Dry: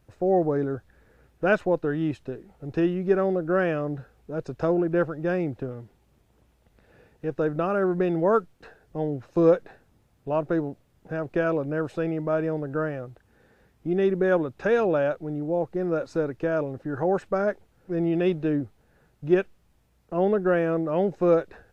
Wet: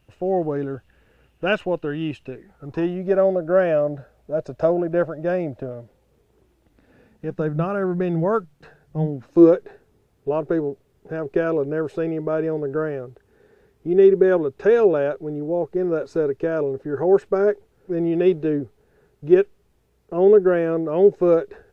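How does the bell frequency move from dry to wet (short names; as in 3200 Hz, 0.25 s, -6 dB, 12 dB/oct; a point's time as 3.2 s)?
bell +14.5 dB 0.29 oct
2.24 s 2800 Hz
3 s 610 Hz
5.77 s 610 Hz
7.66 s 150 Hz
8.99 s 150 Hz
9.53 s 410 Hz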